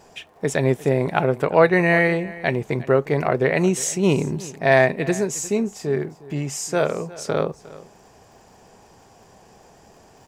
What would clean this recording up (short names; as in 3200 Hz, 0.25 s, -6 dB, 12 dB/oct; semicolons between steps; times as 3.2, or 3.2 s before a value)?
de-click; inverse comb 0.357 s -19 dB